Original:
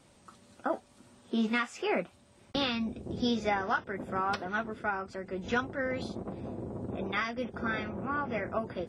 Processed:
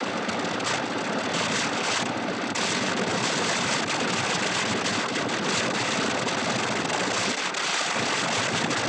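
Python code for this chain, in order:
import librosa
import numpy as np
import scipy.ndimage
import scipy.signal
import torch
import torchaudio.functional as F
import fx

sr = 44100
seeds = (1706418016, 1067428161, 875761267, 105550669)

y = fx.bin_compress(x, sr, power=0.2)
y = fx.high_shelf(y, sr, hz=3000.0, db=-6.0)
y = (np.mod(10.0 ** (18.5 / 20.0) * y + 1.0, 2.0) - 1.0) / 10.0 ** (18.5 / 20.0)
y = fx.highpass(y, sr, hz=600.0, slope=6, at=(7.3, 7.94))
y = fx.noise_vocoder(y, sr, seeds[0], bands=16)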